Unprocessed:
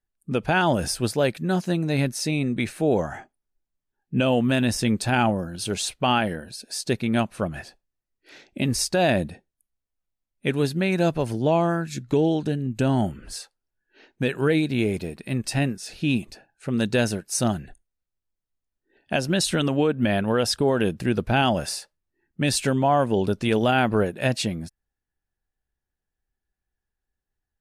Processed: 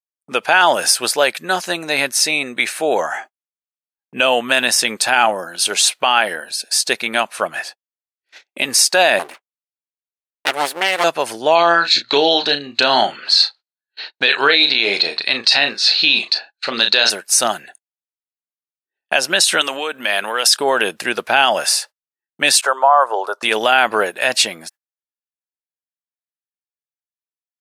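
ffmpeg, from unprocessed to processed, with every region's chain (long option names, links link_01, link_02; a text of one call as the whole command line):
ffmpeg -i in.wav -filter_complex "[0:a]asettb=1/sr,asplit=3[link_01][link_02][link_03];[link_01]atrim=end=9.194[link_04];[link_02]atrim=start=9.19:end=11.04,asetpts=PTS-STARTPTS,afade=type=in:duration=0.004:curve=qsin,afade=type=out:start_time=1.846:duration=0.004:curve=qsin,agate=range=-33dB:threshold=-41dB:ratio=3:release=100:detection=peak,equalizer=frequency=4800:width_type=o:width=0.99:gain=-8,aeval=exprs='abs(val(0))':channel_layout=same[link_05];[link_03]atrim=start=11.036[link_06];[link_04][link_05]acrossfade=duration=0.004:curve1=hsin:curve2=qsin[link_07];[link_07][link_06]acrossfade=duration=0.004:curve1=qsin:curve2=hsin,asettb=1/sr,asplit=3[link_08][link_09][link_10];[link_08]atrim=end=11.554[link_11];[link_09]atrim=start=11.55:end=17.1,asetpts=PTS-STARTPTS,afade=type=in:duration=0.004:curve=qsin,afade=type=out:start_time=5.546:duration=0.004:curve=qsin,lowpass=frequency=4200:width_type=q:width=10,equalizer=frequency=1200:width=0.36:gain=4,asplit=2[link_12][link_13];[link_13]adelay=35,volume=-9.5dB[link_14];[link_12][link_14]amix=inputs=2:normalize=0,atrim=end_sample=244755[link_15];[link_10]atrim=start=17.096[link_16];[link_11][link_15]acrossfade=duration=0.004:curve1=hsin:curve2=qsin[link_17];[link_17][link_16]acrossfade=duration=0.004:curve1=qsin:curve2=hsin,asettb=1/sr,asplit=3[link_18][link_19][link_20];[link_18]atrim=end=19.614[link_21];[link_19]atrim=start=19.61:end=20.57,asetpts=PTS-STARTPTS,afade=type=in:duration=0.004:curve=qsin,afade=type=out:start_time=0.956:duration=0.004:curve=qsin,highpass=180,acompressor=threshold=-25dB:ratio=6:attack=3.2:release=140:knee=1:detection=peak,highshelf=frequency=2000:gain=9[link_22];[link_20]atrim=start=20.566[link_23];[link_21][link_22]acrossfade=duration=0.004:curve1=hsin:curve2=qsin[link_24];[link_24][link_23]acrossfade=duration=0.004:curve1=qsin:curve2=hsin,asettb=1/sr,asplit=3[link_25][link_26][link_27];[link_25]atrim=end=22.614[link_28];[link_26]atrim=start=22.61:end=23.43,asetpts=PTS-STARTPTS,afade=type=in:duration=0.004:curve=qsin,afade=type=out:start_time=0.816:duration=0.004:curve=qsin,agate=range=-33dB:threshold=-38dB:ratio=3:release=100:detection=peak,highpass=frequency=460:width=0.5412,highpass=frequency=460:width=1.3066,highshelf=frequency=1700:width_type=q:width=3:gain=-11[link_29];[link_27]atrim=start=23.426[link_30];[link_28][link_29]acrossfade=duration=0.004:curve1=hsin:curve2=qsin[link_31];[link_31][link_30]acrossfade=duration=0.004:curve1=qsin:curve2=hsin,agate=range=-33dB:threshold=-45dB:ratio=16:detection=peak,highpass=840,alimiter=level_in=15.5dB:limit=-1dB:release=50:level=0:latency=1,volume=-1dB" out.wav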